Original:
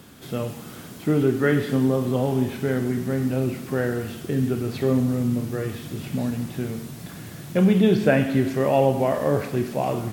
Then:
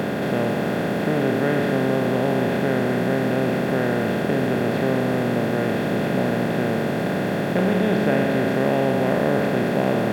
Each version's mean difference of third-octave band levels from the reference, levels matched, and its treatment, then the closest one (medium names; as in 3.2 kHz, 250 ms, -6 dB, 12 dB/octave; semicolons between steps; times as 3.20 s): 7.5 dB: spectral levelling over time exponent 0.2; trim -8 dB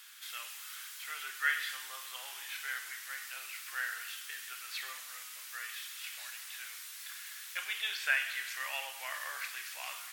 21.0 dB: high-pass 1.5 kHz 24 dB/octave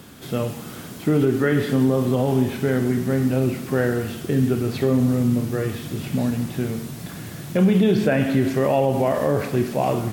1.5 dB: peak limiter -13 dBFS, peak gain reduction 7.5 dB; trim +3.5 dB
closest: third